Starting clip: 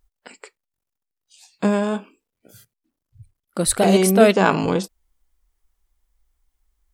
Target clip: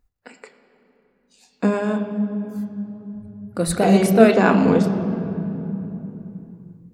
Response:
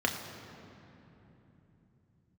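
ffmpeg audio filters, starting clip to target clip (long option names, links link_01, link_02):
-filter_complex "[0:a]asplit=2[link_01][link_02];[1:a]atrim=start_sample=2205,lowpass=5500,lowshelf=frequency=200:gain=8[link_03];[link_02][link_03]afir=irnorm=-1:irlink=0,volume=-7dB[link_04];[link_01][link_04]amix=inputs=2:normalize=0,volume=-6.5dB"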